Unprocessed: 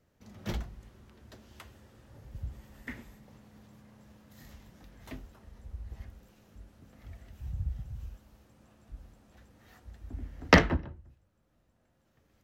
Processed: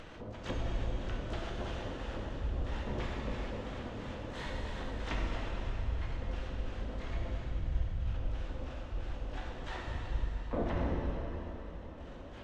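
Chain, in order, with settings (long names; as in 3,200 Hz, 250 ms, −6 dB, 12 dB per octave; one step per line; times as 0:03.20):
graphic EQ with 10 bands 125 Hz −10 dB, 250 Hz −11 dB, 4,000 Hz +4 dB, 8,000 Hz −5 dB
auto-filter low-pass square 3 Hz 540–3,200 Hz
harmonic generator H 2 −7 dB, 5 −19 dB, 6 −28 dB, 8 −40 dB, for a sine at −6 dBFS
high-shelf EQ 2,500 Hz −8 dB
pitch-shifted copies added −12 semitones 0 dB, +7 semitones −15 dB, +12 semitones −12 dB
reversed playback
downward compressor 12 to 1, threshold −42 dBFS, peak gain reduction 32 dB
reversed playback
dense smooth reverb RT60 4 s, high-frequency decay 1×, pre-delay 0 ms, DRR −3 dB
upward compression, threshold −48 dBFS
level +8.5 dB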